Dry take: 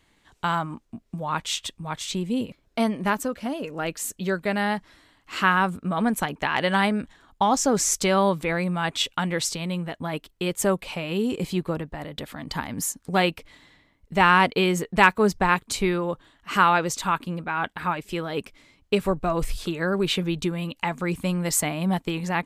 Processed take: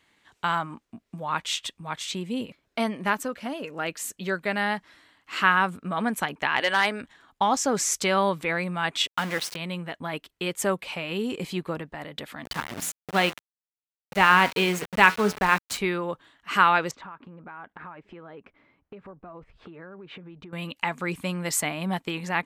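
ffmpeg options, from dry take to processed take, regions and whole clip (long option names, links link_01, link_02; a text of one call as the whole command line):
ffmpeg -i in.wav -filter_complex "[0:a]asettb=1/sr,asplit=3[link_01][link_02][link_03];[link_01]atrim=end=6.604[link_04];[link_02]atrim=start=6.6:end=7.01,asetpts=PTS-STARTPTS,afade=type=in:duration=0.004:curve=qsin,afade=type=out:start_time=0.406:duration=0.004:curve=qsin,highpass=frequency=250:width=0.5412,highpass=frequency=250:width=1.3066,equalizer=frequency=4900:width=0.35:gain=3.5,asoftclip=type=hard:threshold=-12.5dB[link_05];[link_03]atrim=start=7.006[link_06];[link_04][link_05]acrossfade=duration=0.004:curve1=hsin:curve2=qsin[link_07];[link_07][link_06]acrossfade=duration=0.004:curve1=qsin:curve2=hsin,asettb=1/sr,asplit=3[link_08][link_09][link_10];[link_08]atrim=end=9.074[link_11];[link_09]atrim=start=9.07:end=9.56,asetpts=PTS-STARTPTS,afade=type=in:duration=0.004:curve=qsin,afade=type=out:start_time=0.486:duration=0.004:curve=qsin,equalizer=frequency=7200:width=4.1:gain=-11.5,aeval=exprs='val(0)*gte(abs(val(0)),0.0335)':channel_layout=same[link_12];[link_10]atrim=start=9.556[link_13];[link_11][link_12]acrossfade=duration=0.004:curve1=hsin:curve2=qsin[link_14];[link_14][link_13]acrossfade=duration=0.004:curve1=qsin:curve2=hsin,asettb=1/sr,asplit=3[link_15][link_16][link_17];[link_15]atrim=end=12.454[link_18];[link_16]atrim=start=12.45:end=15.78,asetpts=PTS-STARTPTS,afade=type=in:duration=0.004:curve=qsin,afade=type=out:start_time=3.326:duration=0.004:curve=qsin,lowshelf=frequency=92:gain=10,bandreject=frequency=86.44:width_type=h:width=4,bandreject=frequency=172.88:width_type=h:width=4,bandreject=frequency=259.32:width_type=h:width=4,bandreject=frequency=345.76:width_type=h:width=4,bandreject=frequency=432.2:width_type=h:width=4,bandreject=frequency=518.64:width_type=h:width=4,bandreject=frequency=605.08:width_type=h:width=4,bandreject=frequency=691.52:width_type=h:width=4,bandreject=frequency=777.96:width_type=h:width=4,bandreject=frequency=864.4:width_type=h:width=4,bandreject=frequency=950.84:width_type=h:width=4,bandreject=frequency=1037.28:width_type=h:width=4,bandreject=frequency=1123.72:width_type=h:width=4,bandreject=frequency=1210.16:width_type=h:width=4,bandreject=frequency=1296.6:width_type=h:width=4,bandreject=frequency=1383.04:width_type=h:width=4,bandreject=frequency=1469.48:width_type=h:width=4,bandreject=frequency=1555.92:width_type=h:width=4,bandreject=frequency=1642.36:width_type=h:width=4,bandreject=frequency=1728.8:width_type=h:width=4,bandreject=frequency=1815.24:width_type=h:width=4,bandreject=frequency=1901.68:width_type=h:width=4,bandreject=frequency=1988.12:width_type=h:width=4,bandreject=frequency=2074.56:width_type=h:width=4,bandreject=frequency=2161:width_type=h:width=4,bandreject=frequency=2247.44:width_type=h:width=4,bandreject=frequency=2333.88:width_type=h:width=4,bandreject=frequency=2420.32:width_type=h:width=4,bandreject=frequency=2506.76:width_type=h:width=4,bandreject=frequency=2593.2:width_type=h:width=4,aeval=exprs='val(0)*gte(abs(val(0)),0.0398)':channel_layout=same[link_19];[link_17]atrim=start=15.776[link_20];[link_18][link_19]acrossfade=duration=0.004:curve1=hsin:curve2=qsin[link_21];[link_21][link_20]acrossfade=duration=0.004:curve1=qsin:curve2=hsin,asettb=1/sr,asplit=3[link_22][link_23][link_24];[link_22]atrim=end=16.914[link_25];[link_23]atrim=start=16.91:end=20.53,asetpts=PTS-STARTPTS,afade=type=in:duration=0.004:curve=qsin,afade=type=out:start_time=3.616:duration=0.004:curve=qsin,lowpass=1400,acompressor=threshold=-36dB:ratio=10:attack=3.2:release=140:knee=1:detection=peak[link_26];[link_24]atrim=start=20.526[link_27];[link_25][link_26]acrossfade=duration=0.004:curve1=hsin:curve2=qsin[link_28];[link_28][link_27]acrossfade=duration=0.004:curve1=qsin:curve2=hsin,highpass=frequency=140:poles=1,equalizer=frequency=2000:width_type=o:width=2.1:gain=5,volume=-3.5dB" out.wav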